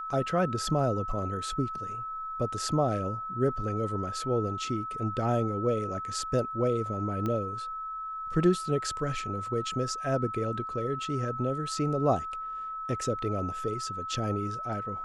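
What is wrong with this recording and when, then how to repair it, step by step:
tone 1300 Hz -34 dBFS
7.26 pop -20 dBFS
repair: de-click; notch 1300 Hz, Q 30

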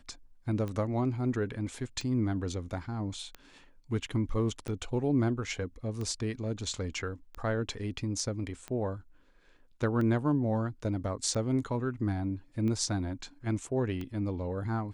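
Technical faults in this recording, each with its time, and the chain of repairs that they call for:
tick 45 rpm -25 dBFS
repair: de-click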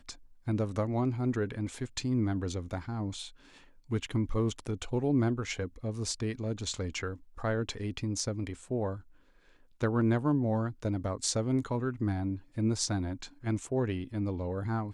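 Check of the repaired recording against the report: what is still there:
none

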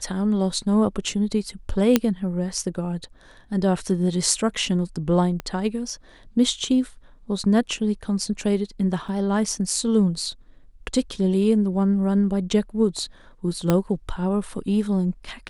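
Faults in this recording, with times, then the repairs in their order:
1.96 pop -2 dBFS
5.4 pop -17 dBFS
9.08–9.09 gap 5.8 ms
13.7 pop -6 dBFS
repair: de-click; interpolate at 9.08, 5.8 ms

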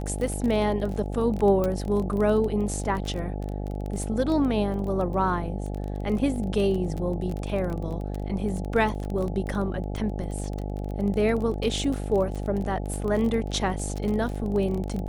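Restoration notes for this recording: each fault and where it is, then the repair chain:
buzz 50 Hz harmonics 17 -31 dBFS
crackle 22/s -29 dBFS
1.64 pop -15 dBFS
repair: de-click; de-hum 50 Hz, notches 17

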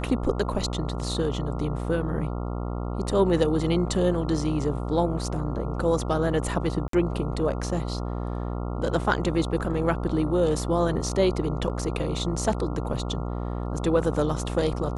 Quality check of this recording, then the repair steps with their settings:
buzz 60 Hz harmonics 23 -30 dBFS
6.88–6.93 gap 53 ms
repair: de-hum 60 Hz, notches 23; interpolate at 6.88, 53 ms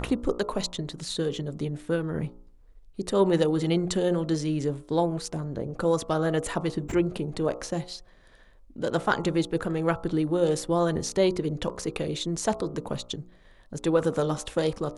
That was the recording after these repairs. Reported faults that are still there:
none

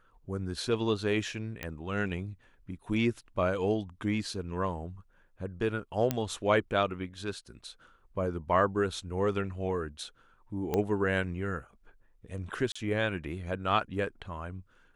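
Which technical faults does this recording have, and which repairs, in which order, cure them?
1.63 pop -20 dBFS
6.11 pop -13 dBFS
10.74 pop -16 dBFS
12.72–12.76 gap 35 ms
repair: de-click; interpolate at 12.72, 35 ms

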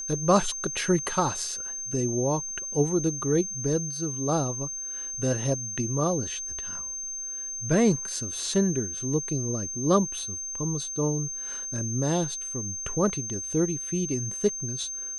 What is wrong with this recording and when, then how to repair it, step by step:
tone 6300 Hz -32 dBFS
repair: notch 6300 Hz, Q 30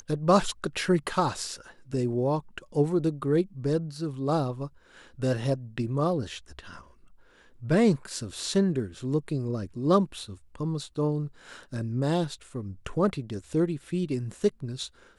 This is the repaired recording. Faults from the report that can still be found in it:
none

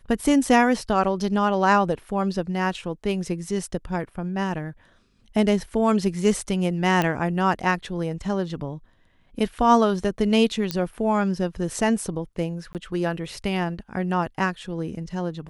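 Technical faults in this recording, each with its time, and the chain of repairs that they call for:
7.02 pop -9 dBFS
10.71 pop -10 dBFS
12.73–12.75 gap 18 ms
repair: de-click; interpolate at 12.73, 18 ms

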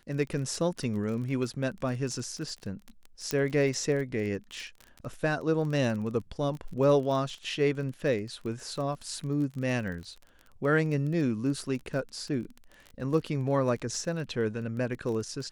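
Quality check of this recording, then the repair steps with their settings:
crackle 25/s -35 dBFS
3.31 pop -13 dBFS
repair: de-click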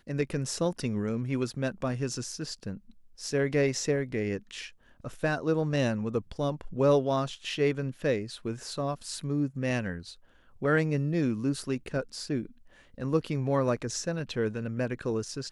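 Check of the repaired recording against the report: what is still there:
none

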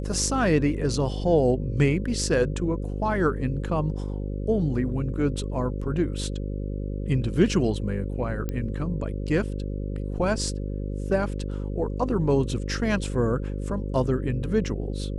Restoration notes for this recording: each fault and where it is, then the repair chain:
buzz 50 Hz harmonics 11 -30 dBFS
8.49 pop -17 dBFS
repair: de-click; de-hum 50 Hz, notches 11

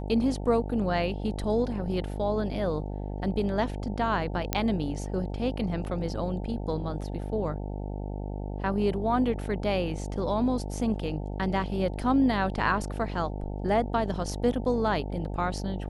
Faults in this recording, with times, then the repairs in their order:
buzz 50 Hz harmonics 18 -34 dBFS
4.53 pop -8 dBFS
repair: de-click; de-hum 50 Hz, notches 18

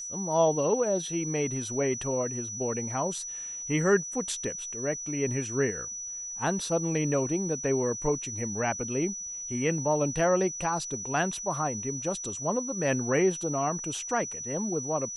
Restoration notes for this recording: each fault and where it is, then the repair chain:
tone 5900 Hz -35 dBFS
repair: notch 5900 Hz, Q 30

